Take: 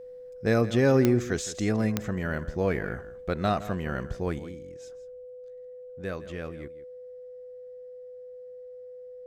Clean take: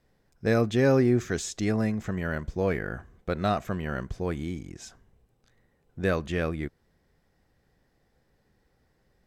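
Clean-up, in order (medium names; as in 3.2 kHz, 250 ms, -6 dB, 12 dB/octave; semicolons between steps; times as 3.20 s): de-click; band-stop 500 Hz, Q 30; inverse comb 164 ms -15.5 dB; trim 0 dB, from 4.39 s +9 dB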